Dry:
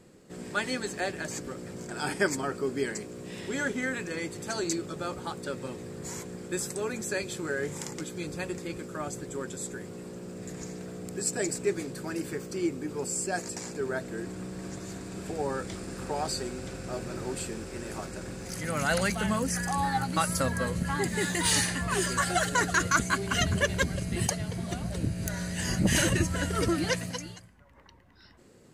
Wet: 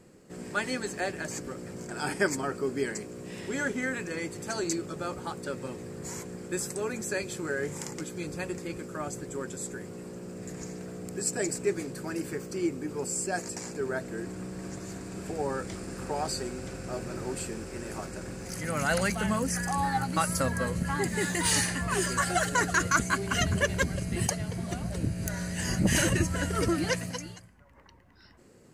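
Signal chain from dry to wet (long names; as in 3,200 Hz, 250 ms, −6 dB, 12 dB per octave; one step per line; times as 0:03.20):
parametric band 3,600 Hz −5 dB 0.41 octaves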